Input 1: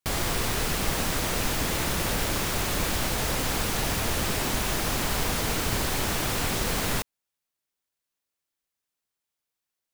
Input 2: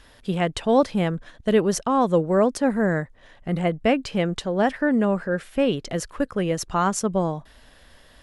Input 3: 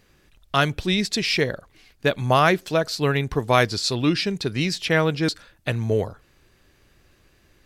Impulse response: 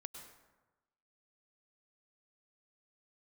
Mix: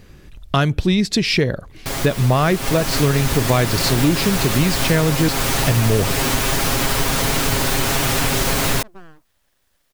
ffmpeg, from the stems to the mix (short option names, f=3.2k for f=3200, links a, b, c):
-filter_complex "[0:a]aecho=1:1:7.4:0.75,dynaudnorm=f=200:g=9:m=13dB,adelay=1800,volume=1.5dB[a];[1:a]aeval=exprs='abs(val(0))':c=same,adelay=1800,volume=-16dB[b];[2:a]acontrast=34,lowshelf=f=350:g=10,volume=2.5dB[c];[a][b][c]amix=inputs=3:normalize=0,acompressor=threshold=-17dB:ratio=2.5"